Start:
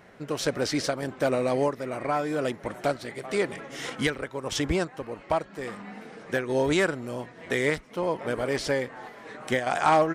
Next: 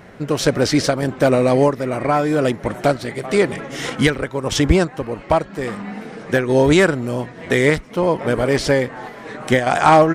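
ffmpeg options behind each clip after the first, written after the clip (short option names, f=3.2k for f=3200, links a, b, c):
-af "lowshelf=f=250:g=7,volume=8.5dB"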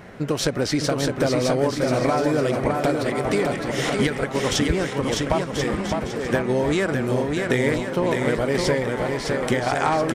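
-af "acompressor=threshold=-19dB:ratio=6,aecho=1:1:610|1037|1336|1545|1692:0.631|0.398|0.251|0.158|0.1"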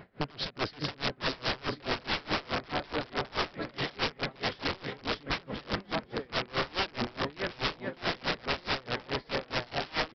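-af "aresample=11025,aeval=exprs='(mod(7.5*val(0)+1,2)-1)/7.5':c=same,aresample=44100,aeval=exprs='val(0)*pow(10,-26*(0.5-0.5*cos(2*PI*4.7*n/s))/20)':c=same,volume=-4.5dB"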